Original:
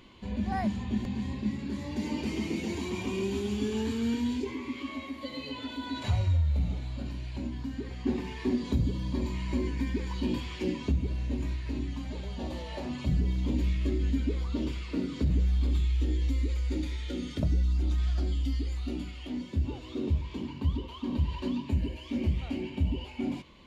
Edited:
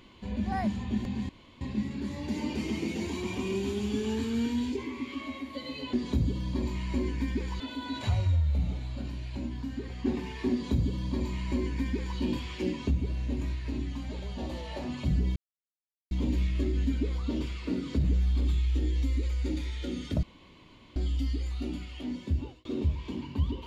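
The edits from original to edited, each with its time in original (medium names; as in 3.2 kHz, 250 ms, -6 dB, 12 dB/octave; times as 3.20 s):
1.29 s: insert room tone 0.32 s
8.52–10.19 s: copy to 5.61 s
13.37 s: insert silence 0.75 s
17.49–18.22 s: room tone
19.61–19.91 s: fade out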